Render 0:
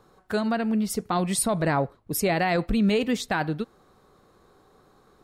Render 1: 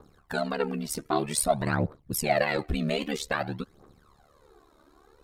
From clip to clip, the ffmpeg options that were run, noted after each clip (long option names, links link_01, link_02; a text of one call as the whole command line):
ffmpeg -i in.wav -af "aphaser=in_gain=1:out_gain=1:delay=3.4:decay=0.73:speed=0.52:type=triangular,aeval=exprs='val(0)*sin(2*PI*36*n/s)':channel_layout=same,volume=-1.5dB" out.wav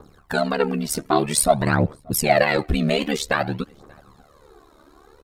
ffmpeg -i in.wav -filter_complex "[0:a]asplit=2[link_01][link_02];[link_02]adelay=583.1,volume=-28dB,highshelf=frequency=4000:gain=-13.1[link_03];[link_01][link_03]amix=inputs=2:normalize=0,volume=7.5dB" out.wav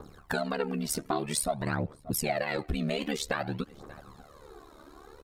ffmpeg -i in.wav -af "acompressor=threshold=-29dB:ratio=4" out.wav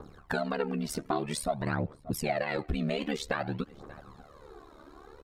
ffmpeg -i in.wav -af "highshelf=frequency=5900:gain=-10.5" out.wav